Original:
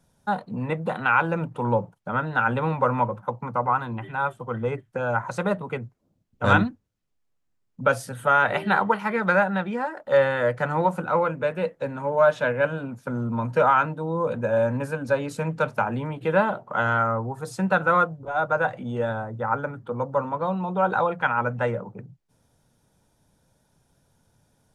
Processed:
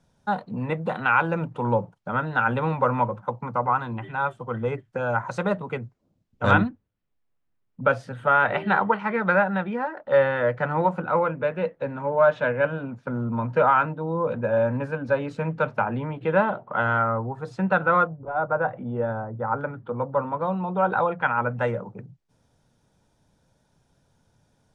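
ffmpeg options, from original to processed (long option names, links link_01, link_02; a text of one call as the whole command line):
ffmpeg -i in.wav -af "asetnsamples=nb_out_samples=441:pad=0,asendcmd='6.51 lowpass f 3100;18.07 lowpass f 1400;19.61 lowpass f 3100;21.59 lowpass f 7300',lowpass=6600" out.wav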